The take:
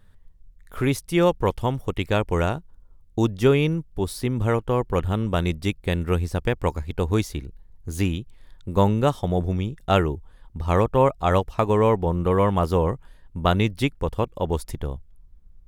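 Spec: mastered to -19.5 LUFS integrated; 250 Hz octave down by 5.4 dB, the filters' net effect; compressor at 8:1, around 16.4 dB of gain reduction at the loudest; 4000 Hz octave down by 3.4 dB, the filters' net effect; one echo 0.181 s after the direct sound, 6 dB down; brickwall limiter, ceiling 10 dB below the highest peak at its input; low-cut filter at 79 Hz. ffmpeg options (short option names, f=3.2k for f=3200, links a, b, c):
-af "highpass=79,equalizer=f=250:t=o:g=-8,equalizer=f=4k:t=o:g=-4.5,acompressor=threshold=-33dB:ratio=8,alimiter=level_in=6dB:limit=-24dB:level=0:latency=1,volume=-6dB,aecho=1:1:181:0.501,volume=21.5dB"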